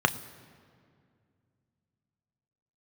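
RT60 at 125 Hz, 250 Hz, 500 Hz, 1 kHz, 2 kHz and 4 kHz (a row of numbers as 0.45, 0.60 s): 3.3, 3.1, 2.4, 2.1, 1.9, 1.4 s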